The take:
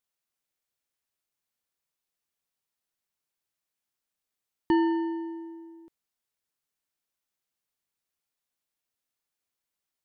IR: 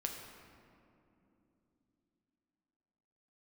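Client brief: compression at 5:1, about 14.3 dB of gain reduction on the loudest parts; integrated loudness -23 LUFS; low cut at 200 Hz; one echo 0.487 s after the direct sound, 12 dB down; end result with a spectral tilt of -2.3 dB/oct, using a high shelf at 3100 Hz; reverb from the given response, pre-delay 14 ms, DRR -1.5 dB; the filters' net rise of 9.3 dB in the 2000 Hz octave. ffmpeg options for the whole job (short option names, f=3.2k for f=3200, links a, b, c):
-filter_complex "[0:a]highpass=200,equalizer=f=2k:t=o:g=9,highshelf=f=3.1k:g=5,acompressor=threshold=-35dB:ratio=5,aecho=1:1:487:0.251,asplit=2[a][b];[1:a]atrim=start_sample=2205,adelay=14[c];[b][c]afir=irnorm=-1:irlink=0,volume=1dB[d];[a][d]amix=inputs=2:normalize=0,volume=15dB"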